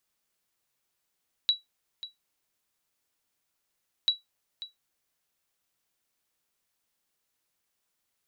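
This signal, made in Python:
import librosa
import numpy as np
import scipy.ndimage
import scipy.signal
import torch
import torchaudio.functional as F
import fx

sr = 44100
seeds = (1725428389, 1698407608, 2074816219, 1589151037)

y = fx.sonar_ping(sr, hz=3910.0, decay_s=0.16, every_s=2.59, pings=2, echo_s=0.54, echo_db=-15.5, level_db=-15.0)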